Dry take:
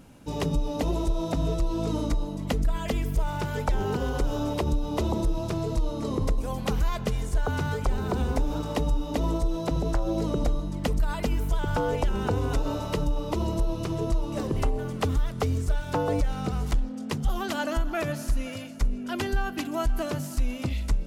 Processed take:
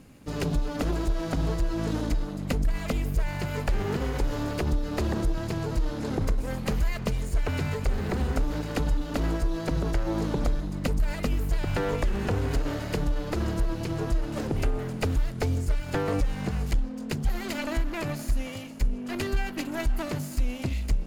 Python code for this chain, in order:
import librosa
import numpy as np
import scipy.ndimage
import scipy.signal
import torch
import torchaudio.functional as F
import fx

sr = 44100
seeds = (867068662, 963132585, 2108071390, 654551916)

y = fx.lower_of_two(x, sr, delay_ms=0.43)